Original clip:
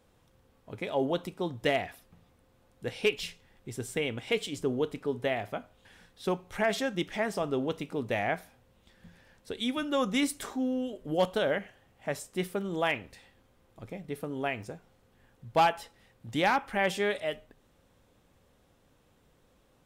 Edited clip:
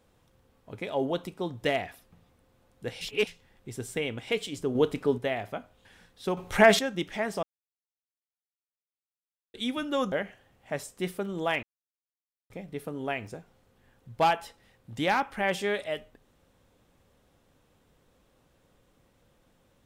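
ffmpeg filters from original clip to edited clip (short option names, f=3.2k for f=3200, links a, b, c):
-filter_complex "[0:a]asplit=12[a][b][c][d][e][f][g][h][i][j][k][l];[a]atrim=end=3.012[m];[b]atrim=start=3.008:end=3.272,asetpts=PTS-STARTPTS,areverse[n];[c]atrim=start=3.268:end=4.752[o];[d]atrim=start=4.748:end=5.182,asetpts=PTS-STARTPTS,volume=6dB[p];[e]atrim=start=5.178:end=6.372[q];[f]atrim=start=6.368:end=6.792,asetpts=PTS-STARTPTS,volume=10dB[r];[g]atrim=start=6.788:end=7.43,asetpts=PTS-STARTPTS,afade=t=out:st=0.638:d=0.004:c=hsin[s];[h]atrim=start=7.43:end=9.54,asetpts=PTS-STARTPTS,volume=0[t];[i]atrim=start=9.54:end=10.122,asetpts=PTS-STARTPTS,afade=t=in:d=0.004:c=hsin[u];[j]atrim=start=11.478:end=12.99,asetpts=PTS-STARTPTS,afade=t=out:st=1.508:d=0.004:c=hsin[v];[k]atrim=start=12.99:end=13.86,asetpts=PTS-STARTPTS,volume=0[w];[l]atrim=start=13.86,asetpts=PTS-STARTPTS,afade=t=in:d=0.004:c=hsin[x];[m][n]acrossfade=d=0.004:c1=hsin:c2=hsin[y];[y][o]acrossfade=d=0.004:c1=hsin:c2=hsin[z];[z][p]acrossfade=d=0.004:c1=hsin:c2=hsin[aa];[aa][q]acrossfade=d=0.004:c1=hsin:c2=hsin[ab];[ab][r]acrossfade=d=0.004:c1=hsin:c2=hsin[ac];[s][t][u]concat=n=3:v=0:a=1[ad];[ac][ad]acrossfade=d=0.004:c1=hsin:c2=hsin[ae];[v][w][x]concat=n=3:v=0:a=1[af];[ae][af]acrossfade=d=0.004:c1=hsin:c2=hsin"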